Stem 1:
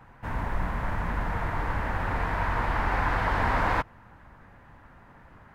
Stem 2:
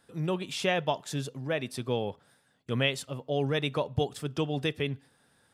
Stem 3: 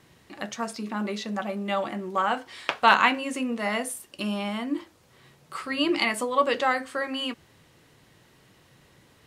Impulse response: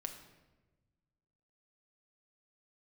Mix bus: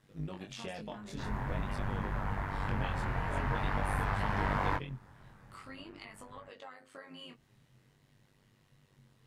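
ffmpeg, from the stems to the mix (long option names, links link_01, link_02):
-filter_complex "[0:a]adelay=950,volume=-1.5dB[link_01];[1:a]acompressor=threshold=-29dB:ratio=6,highshelf=frequency=8600:gain=-9.5,volume=-4.5dB[link_02];[2:a]equalizer=frequency=130:width_type=o:width=0.2:gain=10.5,acompressor=threshold=-33dB:ratio=20,volume=-6.5dB[link_03];[link_01][link_02][link_03]amix=inputs=3:normalize=0,equalizer=frequency=120:width_type=o:width=0.67:gain=7,tremolo=f=98:d=0.75,flanger=delay=19:depth=5.7:speed=0.47"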